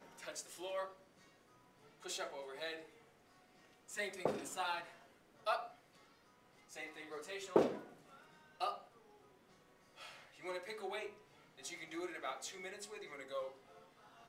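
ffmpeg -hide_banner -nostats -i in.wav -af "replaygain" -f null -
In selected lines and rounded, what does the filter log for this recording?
track_gain = +24.6 dB
track_peak = 0.099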